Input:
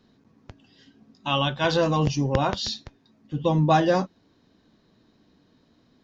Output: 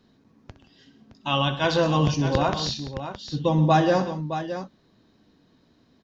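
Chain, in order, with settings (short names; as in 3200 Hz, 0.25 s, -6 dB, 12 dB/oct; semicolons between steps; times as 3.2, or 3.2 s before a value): tapped delay 64/128/175/617 ms -13.5/-15.5/-20/-10 dB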